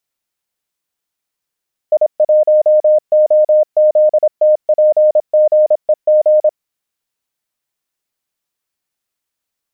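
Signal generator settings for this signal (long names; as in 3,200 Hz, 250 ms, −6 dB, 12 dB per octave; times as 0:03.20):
Morse code "I1OZTPGEG" 26 words per minute 612 Hz −6 dBFS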